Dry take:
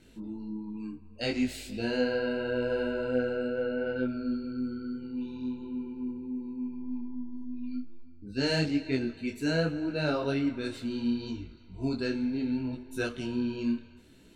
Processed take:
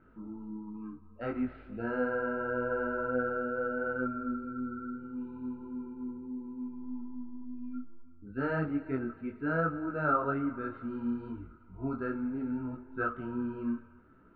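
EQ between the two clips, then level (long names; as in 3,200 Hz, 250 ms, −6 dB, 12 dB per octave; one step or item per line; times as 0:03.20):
low-pass with resonance 1,300 Hz, resonance Q 12
high-frequency loss of the air 320 metres
−4.0 dB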